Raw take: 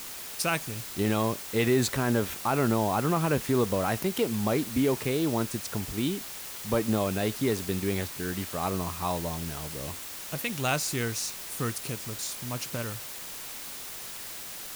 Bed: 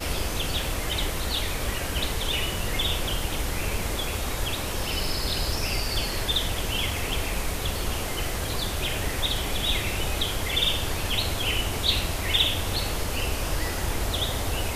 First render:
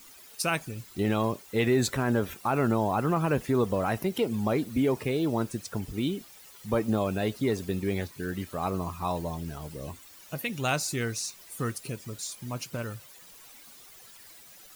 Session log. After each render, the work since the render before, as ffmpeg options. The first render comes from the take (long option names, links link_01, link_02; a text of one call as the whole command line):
ffmpeg -i in.wav -af "afftdn=noise_reduction=14:noise_floor=-40" out.wav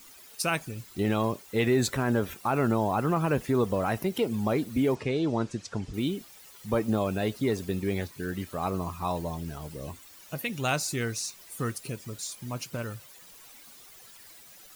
ffmpeg -i in.wav -filter_complex "[0:a]asettb=1/sr,asplit=3[link_01][link_02][link_03];[link_01]atrim=end=4.954[link_04];[link_02]atrim=start=4.95:end=5.94,asetpts=PTS-STARTPTS,afade=type=in:duration=0.004:curve=qsin,afade=type=out:start_time=0.986:duration=0.004:curve=qsin,lowpass=frequency=7200:width=0.5412,lowpass=frequency=7200:width=1.3066[link_05];[link_03]atrim=start=5.936[link_06];[link_04][link_05]acrossfade=duration=0.004:curve1=hsin:curve2=qsin[link_07];[link_07][link_06]acrossfade=duration=0.004:curve1=qsin:curve2=hsin" out.wav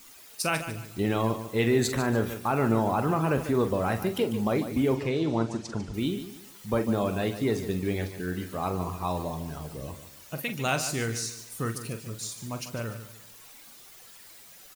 ffmpeg -i in.wav -filter_complex "[0:a]asplit=2[link_01][link_02];[link_02]adelay=44,volume=-10dB[link_03];[link_01][link_03]amix=inputs=2:normalize=0,aecho=1:1:147|294|441:0.266|0.0878|0.029" out.wav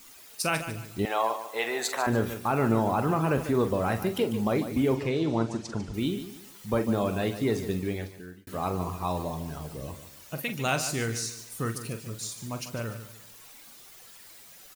ffmpeg -i in.wav -filter_complex "[0:a]asettb=1/sr,asplit=3[link_01][link_02][link_03];[link_01]atrim=end=1.054[link_04];[link_02]atrim=start=1.05:end=2.07,asetpts=PTS-STARTPTS,afade=type=in:duration=0.004:curve=qsin,afade=type=out:start_time=1.016:duration=0.004:curve=qsin,highpass=frequency=740:width_type=q:width=2.2[link_05];[link_03]atrim=start=2.066[link_06];[link_04][link_05]acrossfade=duration=0.004:curve1=hsin:curve2=qsin[link_07];[link_07][link_06]acrossfade=duration=0.004:curve1=qsin:curve2=hsin,asplit=2[link_08][link_09];[link_08]atrim=end=8.47,asetpts=PTS-STARTPTS,afade=type=out:start_time=7.73:duration=0.74[link_10];[link_09]atrim=start=8.47,asetpts=PTS-STARTPTS,afade=type=in:duration=0.004:curve=hsin[link_11];[link_10][link_11]concat=n=2:v=0:a=1" out.wav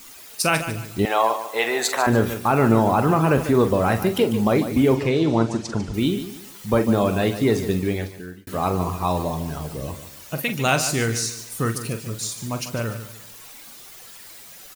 ffmpeg -i in.wav -af "volume=7.5dB" out.wav